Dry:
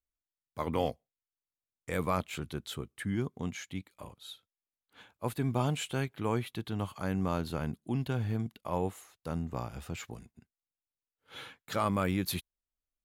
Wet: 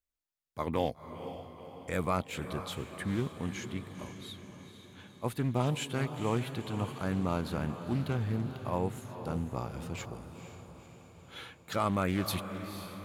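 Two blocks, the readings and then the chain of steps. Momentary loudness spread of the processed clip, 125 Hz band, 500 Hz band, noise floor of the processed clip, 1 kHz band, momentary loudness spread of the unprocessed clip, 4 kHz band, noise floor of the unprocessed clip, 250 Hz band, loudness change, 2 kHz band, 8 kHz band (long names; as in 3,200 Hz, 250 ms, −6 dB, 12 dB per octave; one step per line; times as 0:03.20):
17 LU, +1.0 dB, +0.5 dB, −59 dBFS, +0.5 dB, 16 LU, +0.5 dB, below −85 dBFS, +0.5 dB, 0.0 dB, +0.5 dB, −0.5 dB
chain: feedback delay with all-pass diffusion 486 ms, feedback 57%, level −10 dB
highs frequency-modulated by the lows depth 0.21 ms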